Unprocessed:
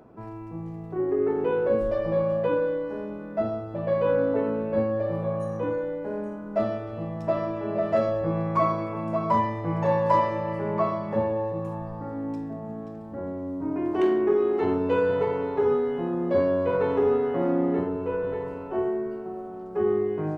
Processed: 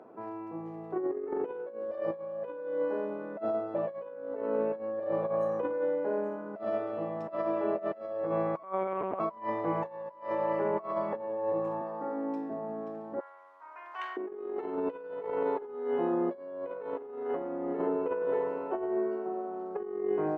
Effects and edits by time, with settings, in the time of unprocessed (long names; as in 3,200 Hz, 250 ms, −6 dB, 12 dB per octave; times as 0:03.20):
0:08.63–0:09.20: one-pitch LPC vocoder at 8 kHz 190 Hz
0:11.81–0:12.50: high-pass filter 180 Hz 24 dB per octave
0:13.20–0:14.17: high-pass filter 1,100 Hz 24 dB per octave
whole clip: high-pass filter 390 Hz 12 dB per octave; compressor whose output falls as the input rises −31 dBFS, ratio −0.5; low-pass filter 1,200 Hz 6 dB per octave